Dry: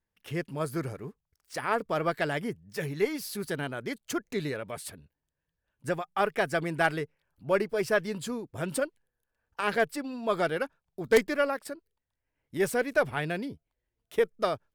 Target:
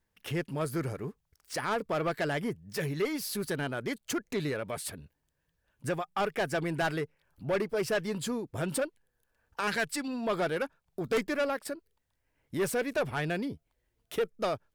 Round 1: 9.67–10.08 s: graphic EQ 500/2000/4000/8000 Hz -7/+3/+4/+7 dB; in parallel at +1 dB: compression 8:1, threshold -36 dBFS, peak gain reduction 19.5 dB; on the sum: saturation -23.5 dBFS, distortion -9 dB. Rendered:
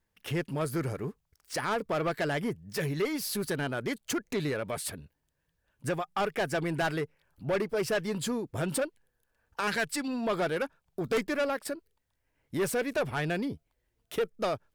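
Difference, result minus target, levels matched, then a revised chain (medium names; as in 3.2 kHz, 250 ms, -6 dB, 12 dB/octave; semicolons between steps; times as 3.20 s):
compression: peak gain reduction -7 dB
9.67–10.08 s: graphic EQ 500/2000/4000/8000 Hz -7/+3/+4/+7 dB; in parallel at +1 dB: compression 8:1, threshold -44 dBFS, peak gain reduction 26.5 dB; on the sum: saturation -23.5 dBFS, distortion -10 dB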